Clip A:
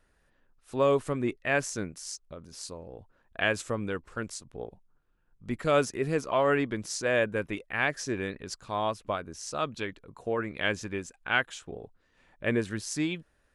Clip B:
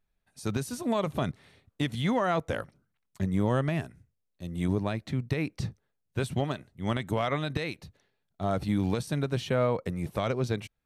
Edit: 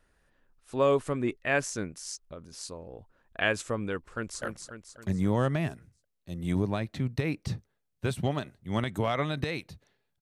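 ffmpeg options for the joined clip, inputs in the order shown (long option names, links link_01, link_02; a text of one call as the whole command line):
ffmpeg -i cue0.wav -i cue1.wav -filter_complex "[0:a]apad=whole_dur=10.21,atrim=end=10.21,atrim=end=4.422[link_01];[1:a]atrim=start=2.548:end=8.34[link_02];[link_01][link_02]acrossfade=duration=0.004:curve1=hsin:curve2=hsin,asplit=2[link_03][link_04];[link_04]afade=type=in:start_time=3.99:duration=0.01,afade=type=out:start_time=4.42:duration=0.01,aecho=0:1:270|540|810|1080|1350|1620:0.595662|0.297831|0.148916|0.0744578|0.0372289|0.0186144[link_05];[link_03][link_05]amix=inputs=2:normalize=0" out.wav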